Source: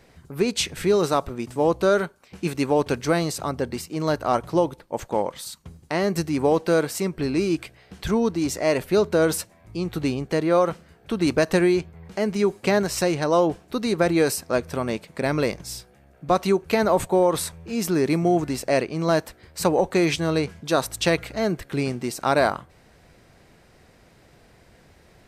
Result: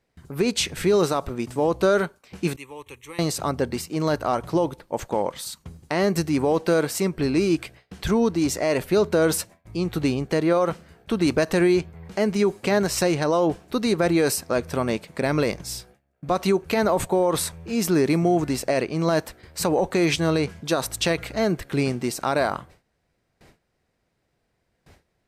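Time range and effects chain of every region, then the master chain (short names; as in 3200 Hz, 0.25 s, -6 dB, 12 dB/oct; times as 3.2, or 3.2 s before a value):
2.56–3.19 passive tone stack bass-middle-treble 5-5-5 + fixed phaser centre 1000 Hz, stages 8
whole clip: gate with hold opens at -42 dBFS; limiter -13.5 dBFS; gain +2 dB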